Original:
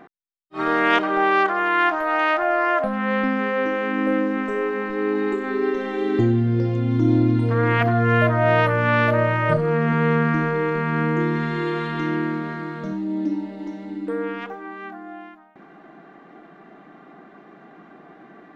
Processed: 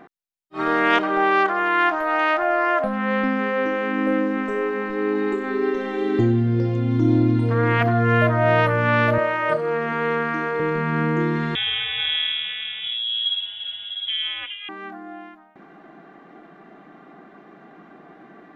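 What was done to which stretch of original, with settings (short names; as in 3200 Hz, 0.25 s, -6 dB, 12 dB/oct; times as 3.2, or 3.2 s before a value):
9.18–10.6 HPF 350 Hz
11.55–14.69 inverted band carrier 3600 Hz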